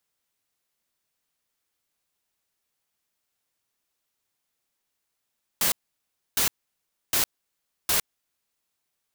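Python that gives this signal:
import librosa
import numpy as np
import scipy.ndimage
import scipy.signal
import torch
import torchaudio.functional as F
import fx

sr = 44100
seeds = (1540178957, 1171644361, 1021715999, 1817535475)

y = fx.noise_burst(sr, seeds[0], colour='white', on_s=0.11, off_s=0.65, bursts=4, level_db=-22.5)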